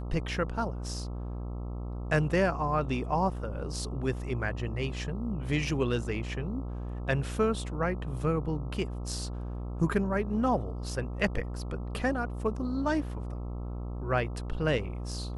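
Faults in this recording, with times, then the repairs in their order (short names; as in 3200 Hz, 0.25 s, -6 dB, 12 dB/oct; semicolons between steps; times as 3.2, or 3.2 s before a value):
buzz 60 Hz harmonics 22 -36 dBFS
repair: de-hum 60 Hz, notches 22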